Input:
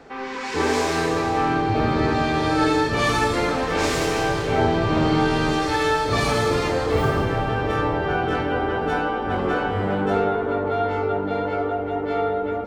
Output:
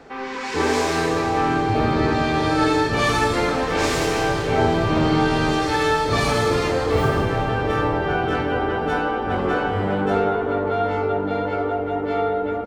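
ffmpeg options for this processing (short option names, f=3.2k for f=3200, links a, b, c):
-af "aecho=1:1:772:0.126,volume=1dB"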